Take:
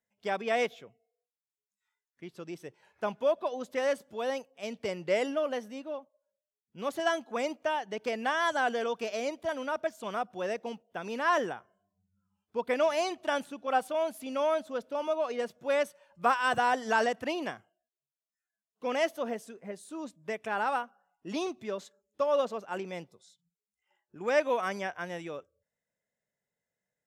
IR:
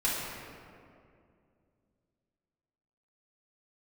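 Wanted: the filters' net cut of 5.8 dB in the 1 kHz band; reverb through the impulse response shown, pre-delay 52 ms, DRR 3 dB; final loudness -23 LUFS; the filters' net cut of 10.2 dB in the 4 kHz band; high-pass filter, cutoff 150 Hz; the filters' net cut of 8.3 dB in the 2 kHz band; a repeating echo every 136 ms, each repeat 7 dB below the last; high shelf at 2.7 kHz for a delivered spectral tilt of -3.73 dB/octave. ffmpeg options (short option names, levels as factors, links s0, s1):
-filter_complex "[0:a]highpass=150,equalizer=f=1000:t=o:g=-5.5,equalizer=f=2000:t=o:g=-5,highshelf=f=2700:g=-7.5,equalizer=f=4000:t=o:g=-5.5,aecho=1:1:136|272|408|544|680:0.447|0.201|0.0905|0.0407|0.0183,asplit=2[s0][s1];[1:a]atrim=start_sample=2205,adelay=52[s2];[s1][s2]afir=irnorm=-1:irlink=0,volume=0.237[s3];[s0][s3]amix=inputs=2:normalize=0,volume=3.16"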